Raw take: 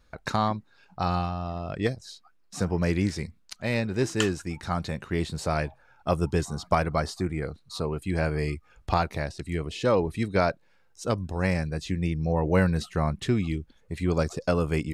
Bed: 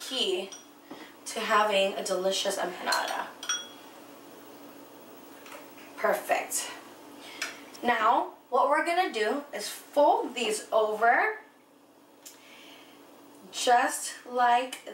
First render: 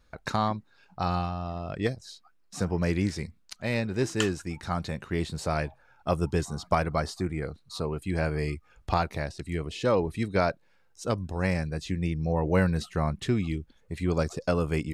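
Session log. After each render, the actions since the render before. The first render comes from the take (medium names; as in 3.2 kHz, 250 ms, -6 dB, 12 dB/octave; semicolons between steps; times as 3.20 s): trim -1.5 dB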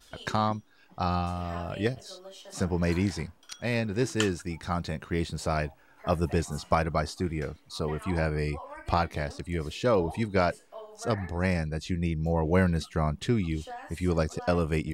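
add bed -19 dB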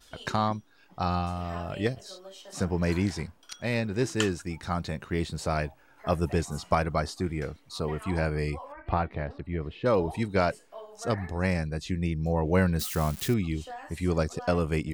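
8.72–9.86 s: distance through air 430 m; 12.79–13.34 s: zero-crossing glitches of -27 dBFS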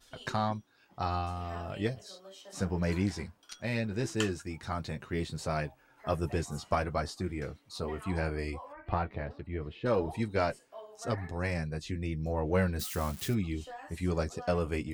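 single-diode clipper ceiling -12.5 dBFS; flange 0.18 Hz, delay 7.5 ms, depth 2.8 ms, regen -38%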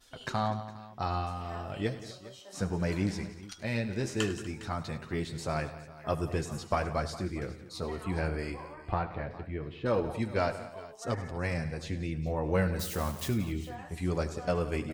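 multi-tap echo 76/101/177/242/410 ms -17.5/-16.5/-16.5/-19/-18.5 dB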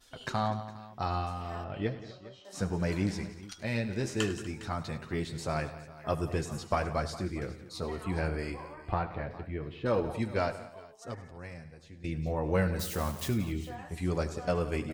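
1.64–2.45 s: distance through air 180 m; 10.30–12.04 s: fade out quadratic, to -15.5 dB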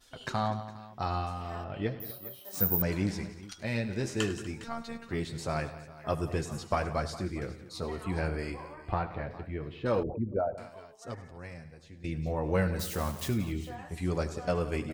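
2.00–2.82 s: careless resampling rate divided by 3×, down none, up zero stuff; 4.64–5.09 s: robot voice 231 Hz; 10.03–10.58 s: resonances exaggerated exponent 3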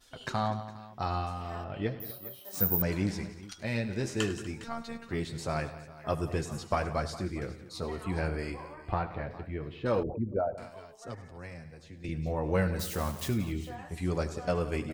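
10.62–12.09 s: three bands compressed up and down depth 40%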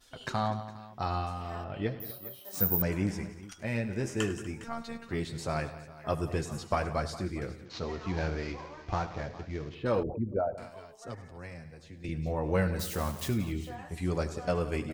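2.88–4.73 s: peaking EQ 4.1 kHz -12 dB 0.42 oct; 7.65–9.75 s: CVSD coder 32 kbps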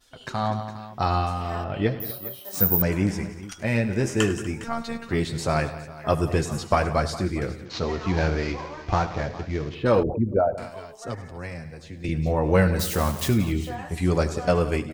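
level rider gain up to 9 dB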